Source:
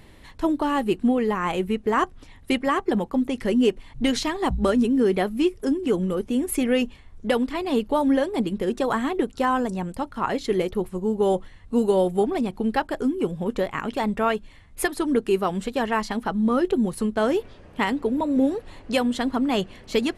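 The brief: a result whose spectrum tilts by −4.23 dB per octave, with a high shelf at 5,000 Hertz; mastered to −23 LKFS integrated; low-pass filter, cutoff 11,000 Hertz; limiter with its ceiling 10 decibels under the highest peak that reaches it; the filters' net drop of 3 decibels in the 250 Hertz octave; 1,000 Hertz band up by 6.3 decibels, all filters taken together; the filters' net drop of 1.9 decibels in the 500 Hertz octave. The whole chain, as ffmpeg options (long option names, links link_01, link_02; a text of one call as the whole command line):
ffmpeg -i in.wav -af "lowpass=11000,equalizer=frequency=250:width_type=o:gain=-3,equalizer=frequency=500:width_type=o:gain=-3.5,equalizer=frequency=1000:width_type=o:gain=9,highshelf=frequency=5000:gain=-5,volume=3.5dB,alimiter=limit=-11.5dB:level=0:latency=1" out.wav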